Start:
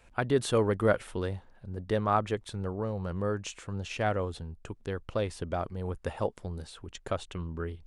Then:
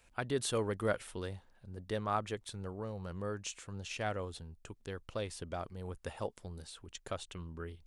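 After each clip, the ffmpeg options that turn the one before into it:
-af "highshelf=f=2800:g=9.5,volume=0.376"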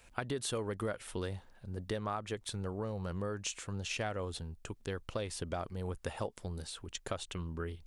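-af "acompressor=threshold=0.0126:ratio=10,volume=1.88"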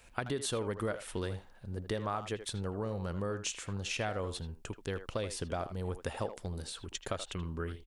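-filter_complex "[0:a]asplit=2[s0][s1];[s1]adelay=80,highpass=300,lowpass=3400,asoftclip=type=hard:threshold=0.0355,volume=0.316[s2];[s0][s2]amix=inputs=2:normalize=0,volume=1.19"

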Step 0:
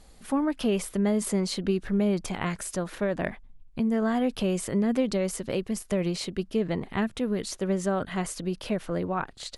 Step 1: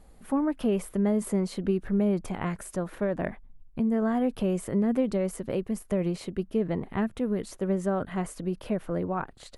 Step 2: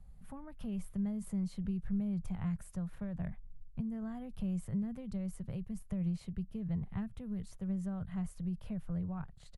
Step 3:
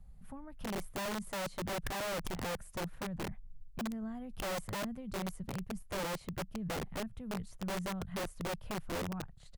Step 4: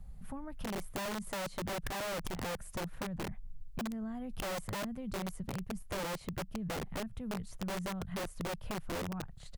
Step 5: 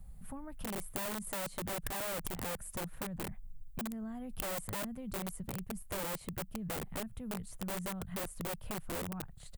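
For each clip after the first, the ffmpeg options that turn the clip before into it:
-af "equalizer=f=4900:w=0.54:g=-12"
-filter_complex "[0:a]acrossover=split=180|3000[s0][s1][s2];[s1]acompressor=threshold=0.02:ratio=2[s3];[s0][s3][s2]amix=inputs=3:normalize=0,firequalizer=gain_entry='entry(160,0);entry(290,-22);entry(730,-15)':delay=0.05:min_phase=1,volume=1.12"
-af "aeval=exprs='(mod(44.7*val(0)+1,2)-1)/44.7':c=same"
-af "acompressor=threshold=0.00708:ratio=4,volume=2"
-af "aexciter=amount=3.3:drive=2.7:freq=7700,volume=0.794"

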